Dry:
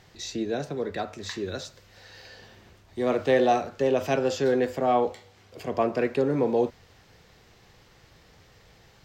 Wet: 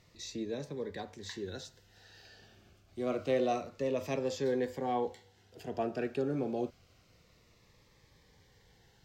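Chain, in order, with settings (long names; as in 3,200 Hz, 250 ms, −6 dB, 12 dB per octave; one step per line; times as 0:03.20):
phaser whose notches keep moving one way falling 0.27 Hz
level −7.5 dB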